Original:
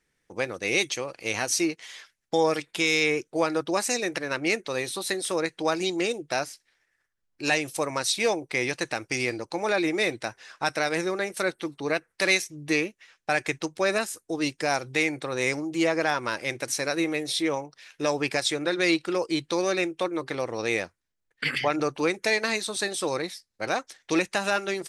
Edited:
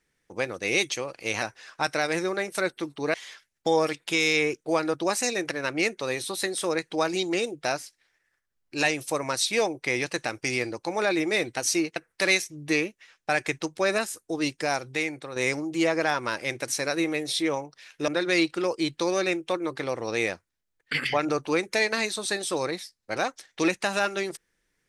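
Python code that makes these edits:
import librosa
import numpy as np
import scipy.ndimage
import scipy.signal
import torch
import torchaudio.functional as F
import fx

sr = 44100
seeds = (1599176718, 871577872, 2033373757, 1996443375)

y = fx.edit(x, sr, fx.swap(start_s=1.42, length_s=0.39, other_s=10.24, other_length_s=1.72),
    fx.fade_out_to(start_s=14.52, length_s=0.84, floor_db=-7.5),
    fx.cut(start_s=18.08, length_s=0.51), tone=tone)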